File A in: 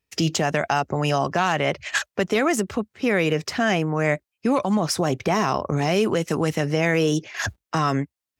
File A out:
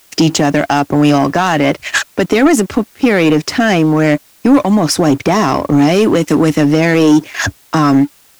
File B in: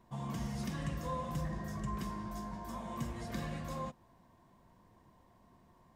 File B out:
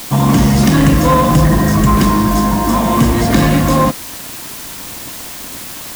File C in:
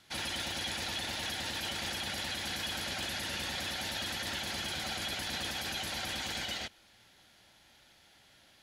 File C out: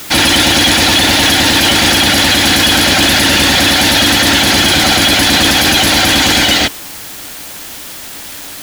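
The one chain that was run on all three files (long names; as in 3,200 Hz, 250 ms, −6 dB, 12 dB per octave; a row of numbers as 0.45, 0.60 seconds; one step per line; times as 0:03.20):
parametric band 290 Hz +12.5 dB 0.26 octaves
leveller curve on the samples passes 2
in parallel at −12 dB: bit-depth reduction 6 bits, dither triangular
on the sum: normalise the peak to −1.5 dBFS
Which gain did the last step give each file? +1.0, +19.5, +19.5 decibels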